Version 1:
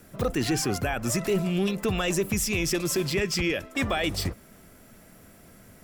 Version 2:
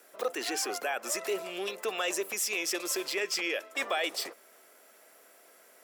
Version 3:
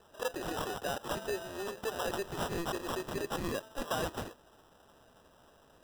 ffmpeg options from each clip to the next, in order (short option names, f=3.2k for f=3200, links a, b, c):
-af "highpass=f=420:w=0.5412,highpass=f=420:w=1.3066,volume=-2.5dB"
-af "acrusher=samples=20:mix=1:aa=0.000001,volume=-3.5dB"